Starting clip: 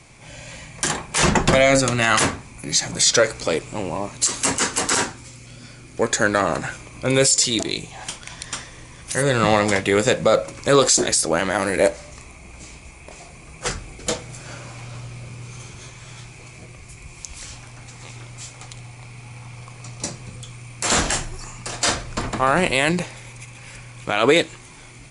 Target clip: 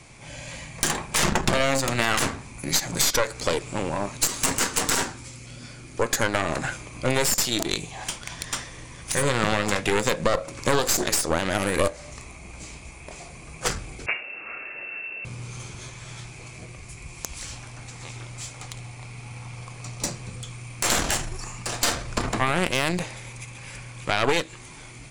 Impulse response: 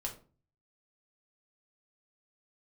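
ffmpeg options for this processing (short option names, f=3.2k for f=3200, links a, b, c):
-filter_complex "[0:a]aeval=exprs='0.794*(cos(1*acos(clip(val(0)/0.794,-1,1)))-cos(1*PI/2))+0.251*(cos(4*acos(clip(val(0)/0.794,-1,1)))-cos(4*PI/2))':c=same,acompressor=threshold=-19dB:ratio=3,asettb=1/sr,asplit=3[a][b][c];[a]atrim=end=14.064[d];[b]atrim=start=14.06:end=15.25,asetpts=PTS-STARTPTS,afade=t=in:d=0.004:c=qsin,afade=t=out:st=1.186:d=0.004:c=qsin,lowpass=f=2.4k:t=q:w=0.5098,lowpass=f=2.4k:t=q:w=0.6013,lowpass=f=2.4k:t=q:w=0.9,lowpass=f=2.4k:t=q:w=2.563,afreqshift=-2800[e];[c]atrim=start=15.246[f];[d][e]acrossfade=d=0.004:c1=hsin:c2=qsin[g];[g][f]acrossfade=d=0.004:c1=qsin:c2=hsin"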